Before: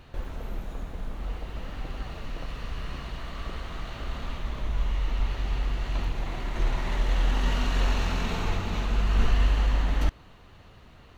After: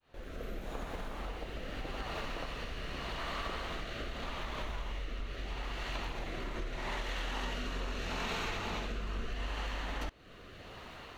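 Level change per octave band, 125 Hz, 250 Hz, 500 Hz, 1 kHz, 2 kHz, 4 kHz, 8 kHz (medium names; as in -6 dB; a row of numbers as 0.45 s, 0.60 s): -13.5 dB, -7.5 dB, -3.0 dB, -4.0 dB, -3.0 dB, -3.0 dB, no reading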